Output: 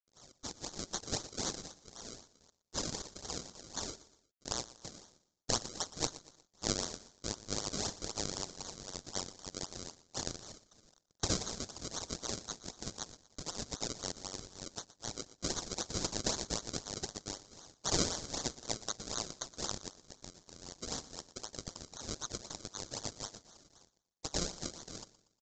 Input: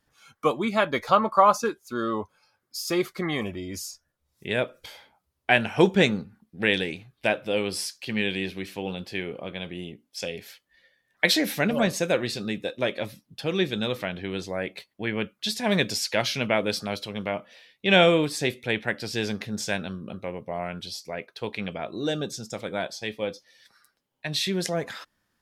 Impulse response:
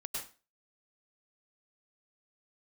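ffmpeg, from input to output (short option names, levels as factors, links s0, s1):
-filter_complex "[0:a]highshelf=f=4600:g=-7,aecho=1:1:1:0.57,asplit=2[s0][s1];[s1]acompressor=threshold=0.0282:ratio=8,volume=1.33[s2];[s0][s2]amix=inputs=2:normalize=0,aeval=exprs='max(val(0),0)':c=same,acrusher=bits=8:mix=0:aa=0.000001,asuperpass=centerf=5900:order=8:qfactor=0.67,acrusher=samples=34:mix=1:aa=0.000001:lfo=1:lforange=34:lforate=3.9,asplit=2[s3][s4];[s4]aecho=0:1:119|238|357:0.133|0.0547|0.0224[s5];[s3][s5]amix=inputs=2:normalize=0,aexciter=amount=5.7:drive=8.5:freq=4000,aresample=16000,aresample=44100,volume=0.531"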